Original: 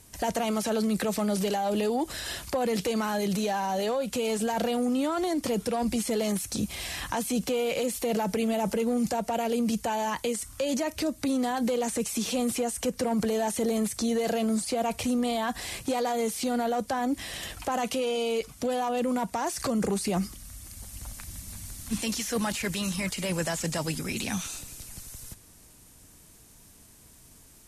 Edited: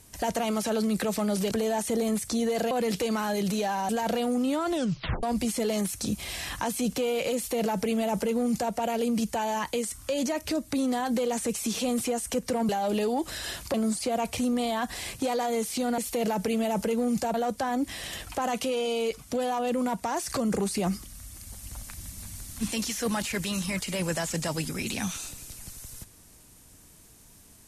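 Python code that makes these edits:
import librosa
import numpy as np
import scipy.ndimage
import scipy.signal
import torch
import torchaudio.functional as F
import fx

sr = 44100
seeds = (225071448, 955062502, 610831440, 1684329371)

y = fx.edit(x, sr, fx.swap(start_s=1.51, length_s=1.05, other_s=13.2, other_length_s=1.2),
    fx.cut(start_s=3.74, length_s=0.66),
    fx.tape_stop(start_s=5.21, length_s=0.53),
    fx.duplicate(start_s=7.87, length_s=1.36, to_s=16.64), tone=tone)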